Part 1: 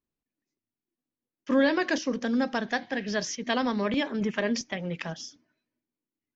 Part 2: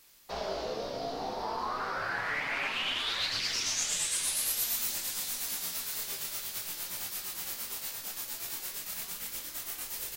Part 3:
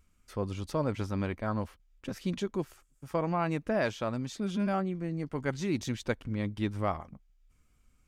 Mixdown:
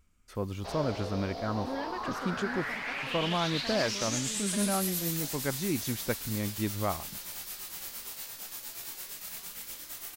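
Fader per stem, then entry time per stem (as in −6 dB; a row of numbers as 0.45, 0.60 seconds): −15.0, −3.0, −0.5 decibels; 0.15, 0.35, 0.00 seconds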